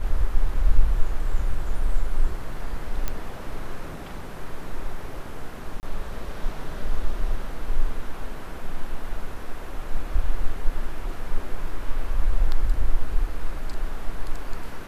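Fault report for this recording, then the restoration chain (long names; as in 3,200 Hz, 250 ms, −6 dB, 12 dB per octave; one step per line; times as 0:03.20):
0:03.08: click −11 dBFS
0:05.80–0:05.83: drop-out 29 ms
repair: click removal
repair the gap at 0:05.80, 29 ms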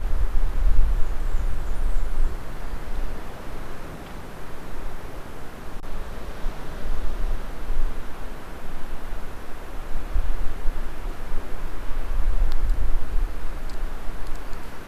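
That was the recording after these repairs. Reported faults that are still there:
none of them is left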